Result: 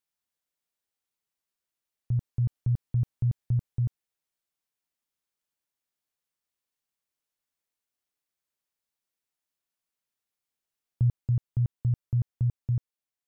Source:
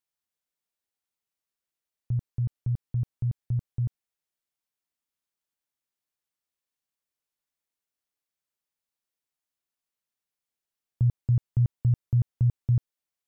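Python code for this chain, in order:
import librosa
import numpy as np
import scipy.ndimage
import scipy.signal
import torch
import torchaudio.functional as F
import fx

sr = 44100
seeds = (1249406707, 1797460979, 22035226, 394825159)

y = fx.rider(x, sr, range_db=10, speed_s=0.5)
y = y * 10.0 ** (-1.0 / 20.0)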